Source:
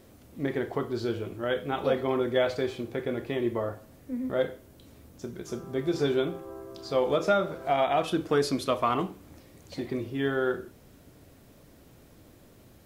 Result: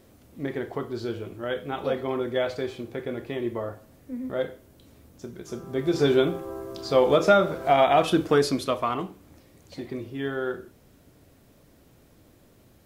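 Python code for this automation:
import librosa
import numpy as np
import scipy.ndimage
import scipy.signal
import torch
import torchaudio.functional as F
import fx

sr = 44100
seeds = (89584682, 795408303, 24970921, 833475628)

y = fx.gain(x, sr, db=fx.line((5.44, -1.0), (6.13, 6.0), (8.19, 6.0), (9.0, -2.0)))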